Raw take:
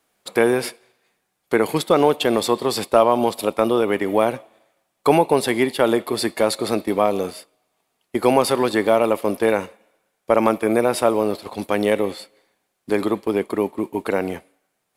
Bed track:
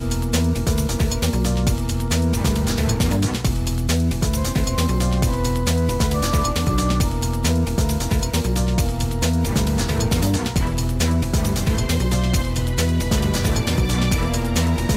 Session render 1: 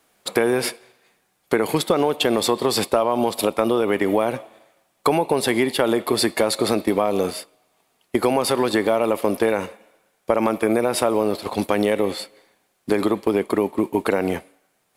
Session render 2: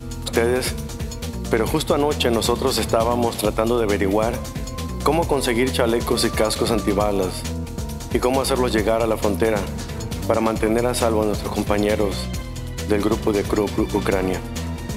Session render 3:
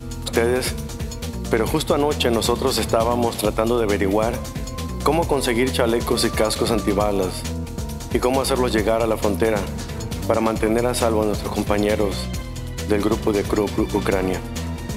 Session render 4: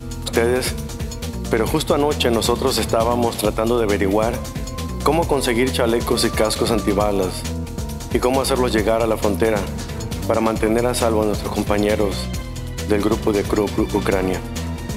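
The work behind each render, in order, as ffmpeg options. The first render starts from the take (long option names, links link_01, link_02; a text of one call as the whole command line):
ffmpeg -i in.wav -filter_complex "[0:a]asplit=2[link_01][link_02];[link_02]alimiter=limit=-11dB:level=0:latency=1,volume=0dB[link_03];[link_01][link_03]amix=inputs=2:normalize=0,acompressor=threshold=-15dB:ratio=6" out.wav
ffmpeg -i in.wav -i bed.wav -filter_complex "[1:a]volume=-8.5dB[link_01];[0:a][link_01]amix=inputs=2:normalize=0" out.wav
ffmpeg -i in.wav -af anull out.wav
ffmpeg -i in.wav -af "volume=1.5dB,alimiter=limit=-3dB:level=0:latency=1" out.wav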